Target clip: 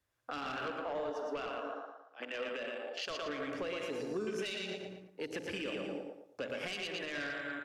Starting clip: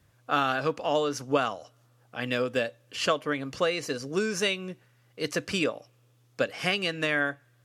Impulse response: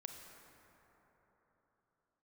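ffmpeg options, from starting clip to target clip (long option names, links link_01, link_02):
-filter_complex "[0:a]asettb=1/sr,asplit=3[link_01][link_02][link_03];[link_01]atrim=end=0.564[link_04];[link_02]atrim=start=0.56:end=3.2,asetpts=PTS-STARTPTS,afade=type=in:duration=0.004:curve=qsin,afade=type=out:start_time=2.636:duration=0.004:curve=qsin,acrossover=split=320 5300:gain=0.178 1 0.178[link_05][link_06][link_07];[link_05][link_06][link_07]amix=inputs=3:normalize=0[link_08];[link_03]atrim=start=3.196[link_09];[link_04][link_08]acrossfade=duration=0.004:curve1=hsin:curve2=qsin[link_10];[link_10][link_09]acrossfade=duration=0.004:curve1=qsin:curve2=hsin[link_11];[1:a]atrim=start_sample=2205,afade=type=out:start_time=0.39:duration=0.01,atrim=end_sample=17640[link_12];[link_11][link_12]afir=irnorm=-1:irlink=0,afwtdn=0.0126,equalizer=frequency=140:width=1:gain=-15,aecho=1:1:114|228|342|456:0.562|0.174|0.054|0.0168,asoftclip=type=tanh:threshold=-25dB,acrossover=split=340|3000[link_13][link_14][link_15];[link_14]acompressor=threshold=-53dB:ratio=2[link_16];[link_13][link_16][link_15]amix=inputs=3:normalize=0,alimiter=level_in=12dB:limit=-24dB:level=0:latency=1:release=150,volume=-12dB,volume=7dB"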